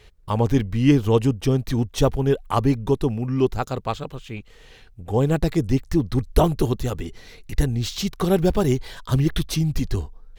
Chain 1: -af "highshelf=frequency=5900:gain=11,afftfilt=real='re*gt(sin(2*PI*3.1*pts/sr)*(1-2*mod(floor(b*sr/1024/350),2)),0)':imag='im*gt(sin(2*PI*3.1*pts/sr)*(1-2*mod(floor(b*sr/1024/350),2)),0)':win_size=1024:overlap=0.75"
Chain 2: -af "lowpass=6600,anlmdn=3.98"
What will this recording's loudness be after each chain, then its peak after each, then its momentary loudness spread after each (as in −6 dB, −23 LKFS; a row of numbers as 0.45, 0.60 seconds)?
−26.0, −22.5 LKFS; −8.0, −2.0 dBFS; 11, 10 LU